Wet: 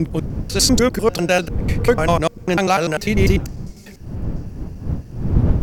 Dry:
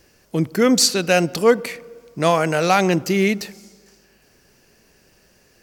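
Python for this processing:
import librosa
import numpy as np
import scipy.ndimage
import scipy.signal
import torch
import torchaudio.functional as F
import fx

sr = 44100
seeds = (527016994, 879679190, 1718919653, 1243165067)

y = fx.block_reorder(x, sr, ms=99.0, group=5)
y = fx.dmg_wind(y, sr, seeds[0], corner_hz=130.0, level_db=-22.0)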